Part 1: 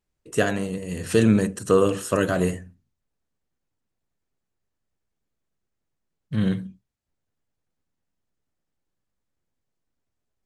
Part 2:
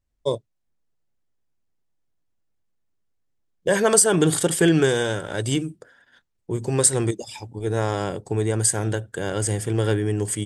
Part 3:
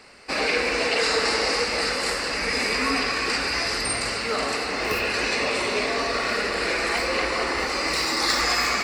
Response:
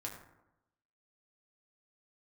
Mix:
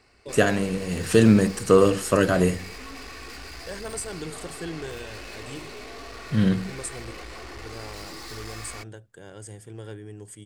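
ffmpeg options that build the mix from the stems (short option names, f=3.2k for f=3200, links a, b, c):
-filter_complex "[0:a]volume=2dB[a];[1:a]volume=-17.5dB[b];[2:a]equalizer=f=68:t=o:w=2.7:g=14,aecho=1:1:2.7:0.36,aeval=exprs='(tanh(25.1*val(0)+0.6)-tanh(0.6))/25.1':c=same,volume=-10dB[c];[a][b][c]amix=inputs=3:normalize=0"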